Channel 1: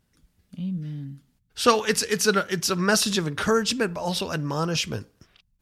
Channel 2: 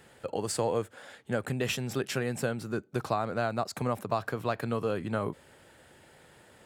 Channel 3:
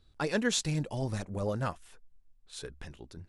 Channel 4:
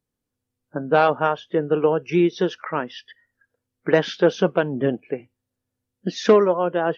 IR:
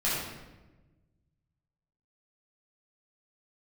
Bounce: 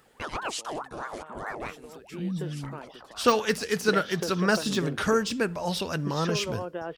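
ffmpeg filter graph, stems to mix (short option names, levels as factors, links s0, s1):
-filter_complex "[0:a]deesser=0.55,adelay=1600,volume=0.794[s0];[1:a]highpass=f=190:w=0.5412,highpass=f=190:w=1.3066,alimiter=limit=0.075:level=0:latency=1,acompressor=threshold=0.00891:ratio=6,volume=0.473[s1];[2:a]aeval=exprs='val(0)*sin(2*PI*880*n/s+880*0.5/4.7*sin(2*PI*4.7*n/s))':c=same,volume=0.891,asplit=2[s2][s3];[3:a]acompressor=mode=upward:threshold=0.00631:ratio=2.5,acompressor=threshold=0.0794:ratio=6,volume=0.398[s4];[s3]apad=whole_len=312051[s5];[s4][s5]sidechaincompress=threshold=0.00501:ratio=8:attack=5.8:release=719[s6];[s0][s1][s2][s6]amix=inputs=4:normalize=0"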